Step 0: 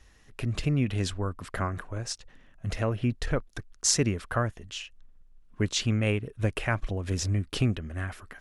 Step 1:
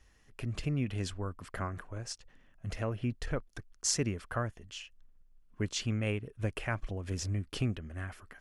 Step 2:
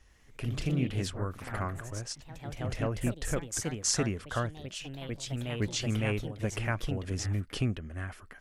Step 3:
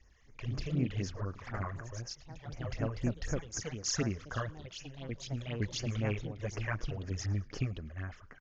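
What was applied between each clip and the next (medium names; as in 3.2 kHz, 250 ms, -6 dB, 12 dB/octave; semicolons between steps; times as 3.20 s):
band-stop 3.8 kHz, Q 14; trim -6.5 dB
ever faster or slower copies 98 ms, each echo +2 st, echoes 3, each echo -6 dB; trim +2 dB
phase shifter stages 12, 4 Hz, lowest notch 230–3800 Hz; rippled Chebyshev low-pass 6.8 kHz, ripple 3 dB; frequency-shifting echo 108 ms, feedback 52%, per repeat -77 Hz, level -24 dB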